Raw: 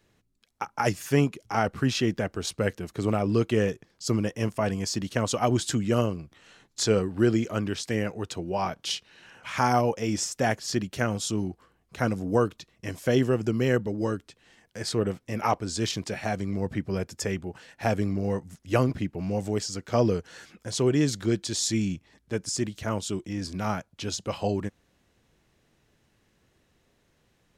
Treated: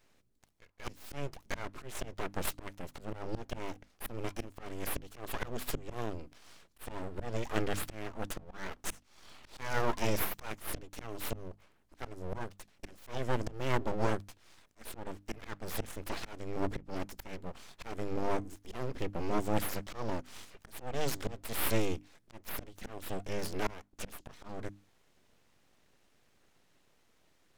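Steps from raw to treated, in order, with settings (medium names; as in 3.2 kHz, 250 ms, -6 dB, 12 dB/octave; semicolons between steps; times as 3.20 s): full-wave rectifier; slow attack 415 ms; hum notches 50/100/150/200/250/300 Hz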